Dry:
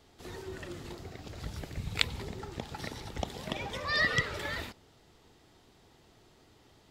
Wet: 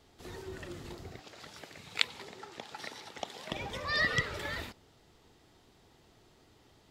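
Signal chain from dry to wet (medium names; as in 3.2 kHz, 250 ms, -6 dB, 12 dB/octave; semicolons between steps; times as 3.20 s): 1.19–3.52 s: frequency weighting A; trim -1.5 dB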